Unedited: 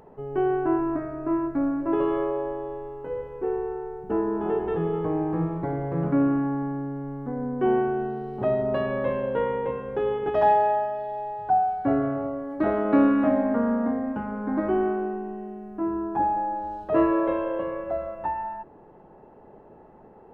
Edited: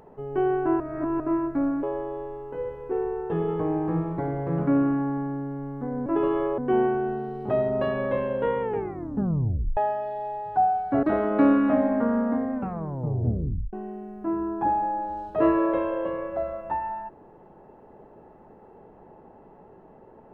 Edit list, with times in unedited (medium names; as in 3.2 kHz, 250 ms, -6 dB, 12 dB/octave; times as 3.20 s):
0.80–1.20 s: reverse
1.83–2.35 s: move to 7.51 s
3.82–4.75 s: delete
9.54 s: tape stop 1.16 s
11.96–12.57 s: delete
14.08 s: tape stop 1.19 s